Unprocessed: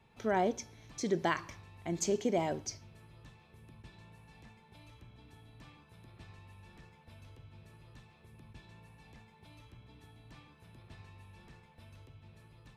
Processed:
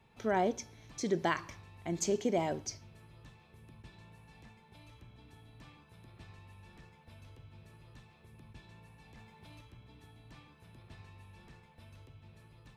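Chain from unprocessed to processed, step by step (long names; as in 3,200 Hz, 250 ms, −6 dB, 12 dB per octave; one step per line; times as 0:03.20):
0:09.17–0:09.61: leveller curve on the samples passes 1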